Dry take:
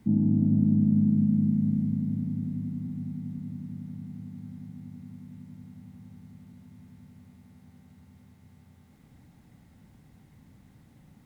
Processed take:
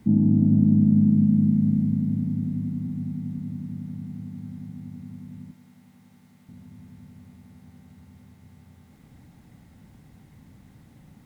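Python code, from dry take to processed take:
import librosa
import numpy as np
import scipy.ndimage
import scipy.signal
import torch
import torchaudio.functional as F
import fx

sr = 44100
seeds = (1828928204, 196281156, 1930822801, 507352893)

y = fx.highpass(x, sr, hz=630.0, slope=6, at=(5.51, 6.49))
y = y * 10.0 ** (4.5 / 20.0)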